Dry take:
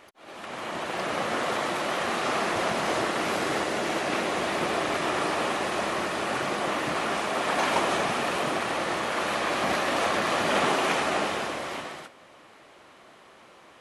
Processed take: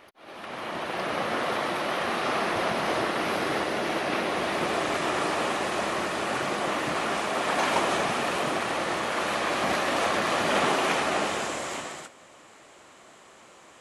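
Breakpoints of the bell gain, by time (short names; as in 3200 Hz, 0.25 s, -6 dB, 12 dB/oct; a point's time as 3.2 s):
bell 7400 Hz 0.47 oct
4.26 s -9 dB
4.83 s +1 dB
11.08 s +1 dB
11.55 s +13 dB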